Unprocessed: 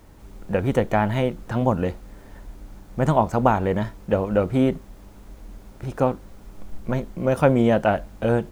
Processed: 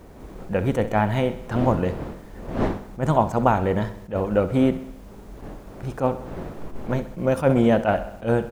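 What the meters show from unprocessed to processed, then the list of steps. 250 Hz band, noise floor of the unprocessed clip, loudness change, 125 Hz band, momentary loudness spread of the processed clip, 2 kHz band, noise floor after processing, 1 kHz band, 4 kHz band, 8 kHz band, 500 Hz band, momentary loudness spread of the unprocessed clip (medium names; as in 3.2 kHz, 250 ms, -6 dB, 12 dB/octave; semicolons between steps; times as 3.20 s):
+0.5 dB, -46 dBFS, -1.0 dB, -0.5 dB, 17 LU, -0.5 dB, -43 dBFS, 0.0 dB, 0.0 dB, no reading, -0.5 dB, 14 LU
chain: wind noise 480 Hz -36 dBFS; feedback delay 65 ms, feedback 59%, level -14.5 dB; attacks held to a fixed rise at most 250 dB/s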